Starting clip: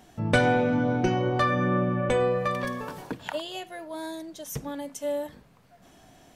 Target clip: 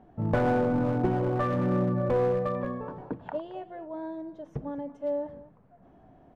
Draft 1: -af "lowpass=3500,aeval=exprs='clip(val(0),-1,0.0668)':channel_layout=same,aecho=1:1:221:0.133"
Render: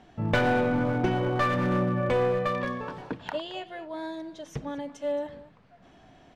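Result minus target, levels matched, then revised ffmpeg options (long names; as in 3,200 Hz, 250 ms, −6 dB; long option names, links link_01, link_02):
4,000 Hz band +13.5 dB
-af "lowpass=920,aeval=exprs='clip(val(0),-1,0.0668)':channel_layout=same,aecho=1:1:221:0.133"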